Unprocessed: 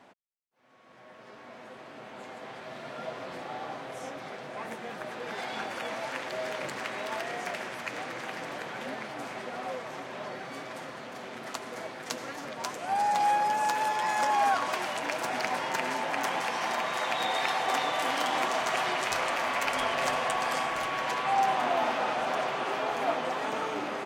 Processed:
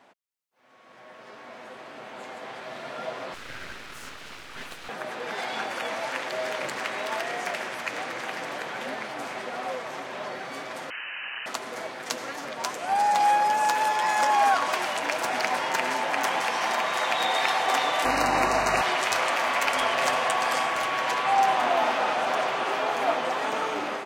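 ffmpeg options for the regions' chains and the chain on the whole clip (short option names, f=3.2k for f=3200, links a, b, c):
-filter_complex "[0:a]asettb=1/sr,asplit=3[a][b][c];[a]atrim=end=3.344[d];[b]atrim=start=3.34:end=4.89,asetpts=PTS-STARTPTS,afade=t=in:d=0.004:c=qsin,afade=t=out:st=1.546:d=0.004:c=qsin,highpass=f=580:w=0.5412,highpass=f=580:w=1.3066,aeval=exprs='abs(val(0))':c=same[e];[c]atrim=start=4.886[f];[d][e]acrossfade=d=0.004:c1=hsin:c2=qsin[g];[g][f]acrossfade=d=0.004:c1=qsin:c2=hsin,asettb=1/sr,asplit=3[h][i][j];[h]atrim=end=10.904[k];[i]atrim=start=10.9:end=11.46,asetpts=PTS-STARTPTS,afade=t=in:d=0.004:c=qsin,afade=t=out:st=0.556:d=0.004:c=qsin,equalizer=f=1.5k:w=6.1:g=9,lowpass=f=2.7k:t=q:w=0.5098,lowpass=f=2.7k:t=q:w=0.6013,lowpass=f=2.7k:t=q:w=0.9,lowpass=f=2.7k:t=q:w=2.563,afreqshift=-3200[l];[j]atrim=start=11.456[m];[k][l]acrossfade=d=0.004:c1=hsin:c2=qsin[n];[n][m]acrossfade=d=0.004:c1=qsin:c2=hsin,asettb=1/sr,asplit=3[o][p][q];[o]atrim=end=18.054[r];[p]atrim=start=18.05:end=18.82,asetpts=PTS-STARTPTS,afade=t=in:d=0.004:c=qsin,afade=t=out:st=0.766:d=0.004:c=qsin,lowshelf=f=310:g=11.5,aeval=exprs='val(0)+0.0126*(sin(2*PI*50*n/s)+sin(2*PI*2*50*n/s)/2+sin(2*PI*3*50*n/s)/3+sin(2*PI*4*50*n/s)/4+sin(2*PI*5*50*n/s)/5)':c=same,asuperstop=centerf=3300:order=12:qfactor=4.2[s];[q]atrim=start=18.816[t];[r][s]acrossfade=d=0.004:c1=hsin:c2=qsin[u];[u][t]acrossfade=d=0.004:c1=qsin:c2=hsin,dynaudnorm=f=210:g=3:m=5dB,lowshelf=f=260:g=-8"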